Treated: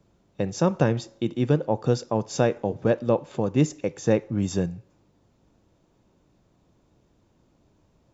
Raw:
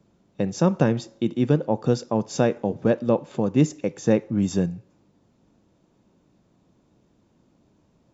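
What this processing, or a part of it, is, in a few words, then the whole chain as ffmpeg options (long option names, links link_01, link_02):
low shelf boost with a cut just above: -af "lowshelf=frequency=82:gain=7,equalizer=frequency=210:width_type=o:width=1.1:gain=-5.5"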